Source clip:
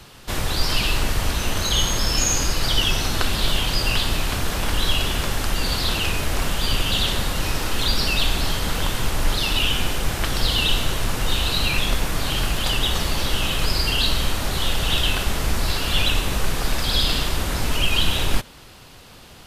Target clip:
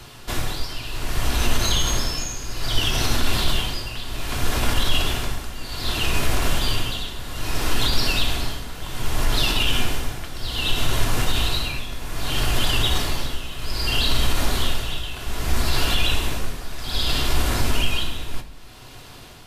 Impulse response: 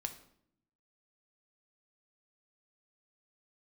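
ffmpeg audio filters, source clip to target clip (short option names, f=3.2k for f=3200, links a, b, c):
-filter_complex "[0:a]tremolo=f=0.63:d=0.81,alimiter=limit=-14dB:level=0:latency=1:release=52[a];[1:a]atrim=start_sample=2205[b];[a][b]afir=irnorm=-1:irlink=0,volume=4dB"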